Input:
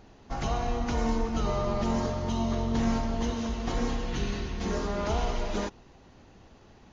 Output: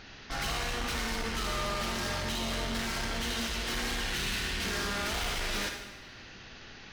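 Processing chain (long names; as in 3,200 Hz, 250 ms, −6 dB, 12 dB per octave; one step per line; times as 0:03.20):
flat-topped bell 2,800 Hz +14.5 dB 2.4 octaves
gain into a clipping stage and back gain 32.5 dB
convolution reverb RT60 0.95 s, pre-delay 47 ms, DRR 4.5 dB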